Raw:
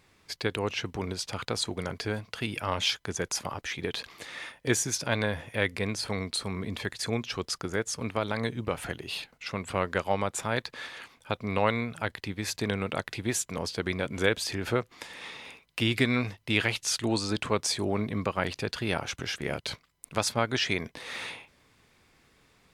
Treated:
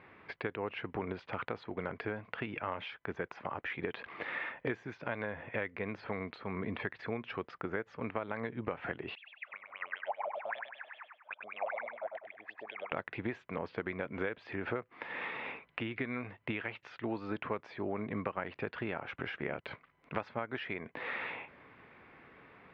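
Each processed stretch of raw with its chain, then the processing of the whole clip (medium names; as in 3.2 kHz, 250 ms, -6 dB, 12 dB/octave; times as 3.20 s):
9.15–12.92 s: wah-wah 5.1 Hz 580–3400 Hz, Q 22 + feedback delay 99 ms, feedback 38%, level -5.5 dB
whole clip: high-pass 250 Hz 6 dB/octave; compression 8:1, threshold -42 dBFS; inverse Chebyshev low-pass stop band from 11 kHz, stop band 80 dB; trim +9 dB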